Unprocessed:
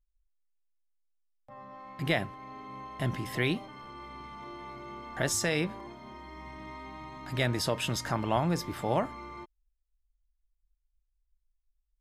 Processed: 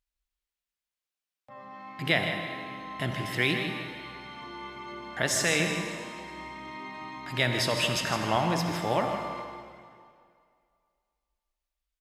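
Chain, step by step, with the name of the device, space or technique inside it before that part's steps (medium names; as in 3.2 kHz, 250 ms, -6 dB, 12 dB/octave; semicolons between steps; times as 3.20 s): PA in a hall (high-pass 110 Hz 6 dB/octave; peaking EQ 2.8 kHz +6 dB 2.1 oct; delay 158 ms -9 dB; reverberation RT60 2.2 s, pre-delay 50 ms, DRR 5 dB)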